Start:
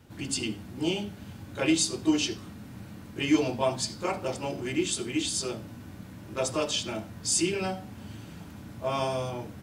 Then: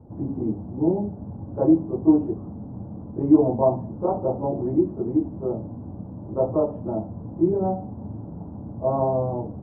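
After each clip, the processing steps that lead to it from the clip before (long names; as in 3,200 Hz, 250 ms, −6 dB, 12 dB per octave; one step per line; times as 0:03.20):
Butterworth low-pass 900 Hz 36 dB per octave
level +8 dB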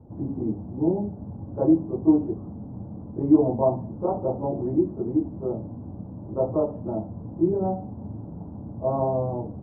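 high-frequency loss of the air 320 metres
level −1 dB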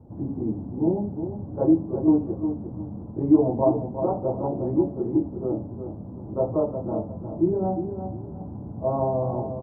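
repeating echo 357 ms, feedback 29%, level −8.5 dB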